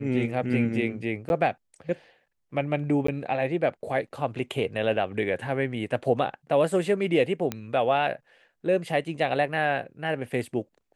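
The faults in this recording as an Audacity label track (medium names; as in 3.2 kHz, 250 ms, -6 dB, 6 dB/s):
1.290000	1.300000	dropout 11 ms
3.070000	3.080000	dropout 14 ms
7.520000	7.520000	pop -14 dBFS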